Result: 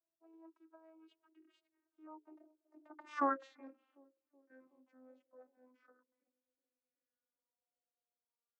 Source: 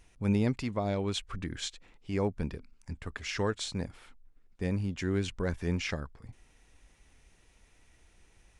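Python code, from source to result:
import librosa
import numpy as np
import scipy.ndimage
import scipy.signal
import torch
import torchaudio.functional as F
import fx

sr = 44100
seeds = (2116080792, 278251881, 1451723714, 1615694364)

y = fx.vocoder_glide(x, sr, note=63, semitones=-4)
y = fx.doppler_pass(y, sr, speed_mps=19, closest_m=1.0, pass_at_s=3.22)
y = fx.band_shelf(y, sr, hz=690.0, db=11.5, octaves=2.7)
y = fx.hum_notches(y, sr, base_hz=60, count=9)
y = fx.echo_banded(y, sr, ms=373, feedback_pct=61, hz=390.0, wet_db=-22.5)
y = fx.bell_lfo(y, sr, hz=0.38, low_hz=660.0, high_hz=2900.0, db=15)
y = y * librosa.db_to_amplitude(-8.5)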